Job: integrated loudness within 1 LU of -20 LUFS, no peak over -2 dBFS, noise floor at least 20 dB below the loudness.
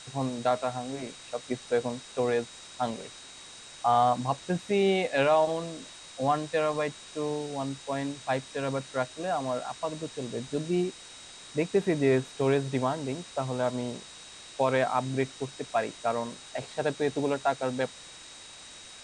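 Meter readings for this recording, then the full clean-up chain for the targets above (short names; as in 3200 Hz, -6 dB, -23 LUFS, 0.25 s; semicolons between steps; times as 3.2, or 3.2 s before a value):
steady tone 3800 Hz; tone level -50 dBFS; noise floor -48 dBFS; noise floor target -50 dBFS; loudness -29.5 LUFS; peak -12.5 dBFS; loudness target -20.0 LUFS
-> notch 3800 Hz, Q 30; noise print and reduce 6 dB; gain +9.5 dB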